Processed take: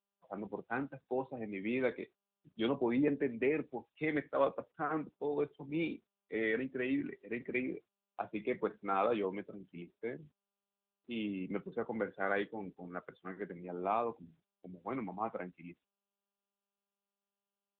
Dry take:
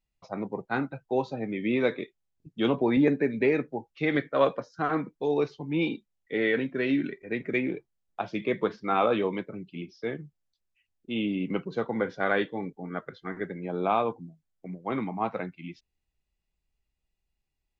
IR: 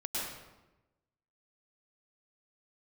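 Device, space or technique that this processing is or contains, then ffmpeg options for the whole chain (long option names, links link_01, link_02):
mobile call with aggressive noise cancelling: -filter_complex "[0:a]asplit=3[link_01][link_02][link_03];[link_01]afade=type=out:start_time=1.29:duration=0.02[link_04];[link_02]highshelf=frequency=2700:gain=3,afade=type=in:start_time=1.29:duration=0.02,afade=type=out:start_time=2.69:duration=0.02[link_05];[link_03]afade=type=in:start_time=2.69:duration=0.02[link_06];[link_04][link_05][link_06]amix=inputs=3:normalize=0,highpass=frequency=170:poles=1,afftdn=noise_reduction=36:noise_floor=-46,volume=-7dB" -ar 8000 -c:a libopencore_amrnb -b:a 10200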